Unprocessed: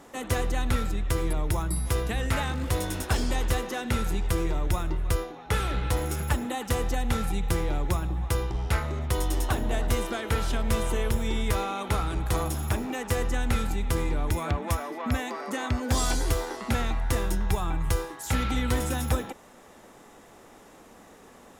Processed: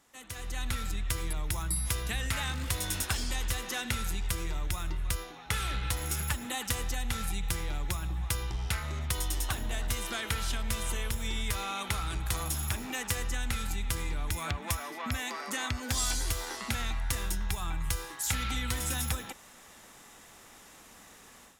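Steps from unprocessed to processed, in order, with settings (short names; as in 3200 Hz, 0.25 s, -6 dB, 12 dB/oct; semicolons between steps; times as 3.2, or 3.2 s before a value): compressor, threshold -26 dBFS, peak gain reduction 7 dB; passive tone stack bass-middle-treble 5-5-5; AGC gain up to 13.5 dB; gain -2 dB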